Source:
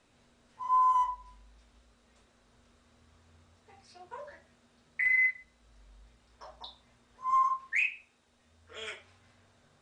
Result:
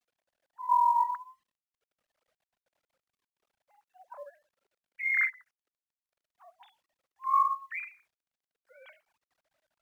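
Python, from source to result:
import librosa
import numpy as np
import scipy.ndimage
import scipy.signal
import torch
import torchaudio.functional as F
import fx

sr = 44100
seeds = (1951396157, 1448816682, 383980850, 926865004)

y = fx.sine_speech(x, sr)
y = fx.lowpass(y, sr, hz=1600.0, slope=6)
y = fx.quant_companded(y, sr, bits=8)
y = fx.vibrato(y, sr, rate_hz=0.84, depth_cents=89.0)
y = fx.am_noise(y, sr, seeds[0], hz=5.7, depth_pct=50)
y = y * 10.0 ** (4.5 / 20.0)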